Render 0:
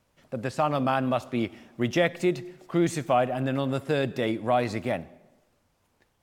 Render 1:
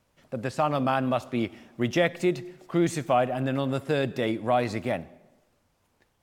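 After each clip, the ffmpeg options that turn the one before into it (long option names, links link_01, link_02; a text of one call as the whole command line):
ffmpeg -i in.wav -af anull out.wav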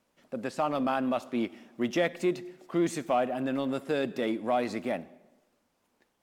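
ffmpeg -i in.wav -filter_complex "[0:a]lowshelf=frequency=160:width_type=q:width=1.5:gain=-9.5,asplit=2[link_01][link_02];[link_02]volume=24.5dB,asoftclip=hard,volume=-24.5dB,volume=-10.5dB[link_03];[link_01][link_03]amix=inputs=2:normalize=0,volume=-5.5dB" out.wav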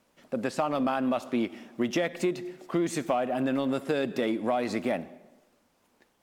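ffmpeg -i in.wav -af "acompressor=threshold=-29dB:ratio=6,volume=5.5dB" out.wav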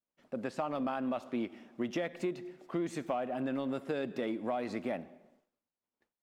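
ffmpeg -i in.wav -af "agate=range=-33dB:threshold=-55dB:ratio=3:detection=peak,highshelf=frequency=4900:gain=-8.5,volume=-7dB" out.wav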